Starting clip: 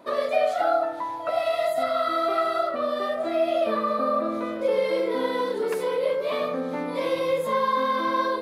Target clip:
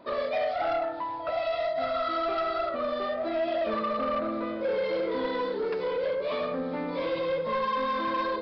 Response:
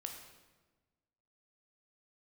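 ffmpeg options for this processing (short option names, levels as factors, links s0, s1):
-af "lowshelf=f=84:g=10.5,aresample=11025,asoftclip=type=tanh:threshold=0.0891,aresample=44100,volume=0.794"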